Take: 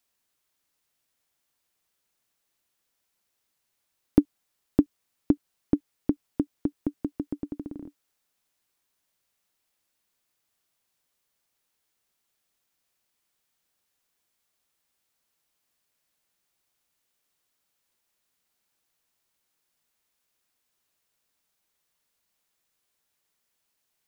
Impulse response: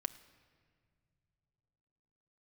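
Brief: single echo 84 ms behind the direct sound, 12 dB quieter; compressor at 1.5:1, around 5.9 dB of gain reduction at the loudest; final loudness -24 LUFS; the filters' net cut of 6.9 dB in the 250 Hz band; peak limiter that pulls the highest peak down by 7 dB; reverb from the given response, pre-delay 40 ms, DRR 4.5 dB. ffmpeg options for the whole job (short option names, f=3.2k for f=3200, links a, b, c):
-filter_complex "[0:a]equalizer=f=250:t=o:g=-8.5,acompressor=threshold=-38dB:ratio=1.5,alimiter=limit=-20.5dB:level=0:latency=1,aecho=1:1:84:0.251,asplit=2[a][b];[1:a]atrim=start_sample=2205,adelay=40[c];[b][c]afir=irnorm=-1:irlink=0,volume=-3.5dB[d];[a][d]amix=inputs=2:normalize=0,volume=19.5dB"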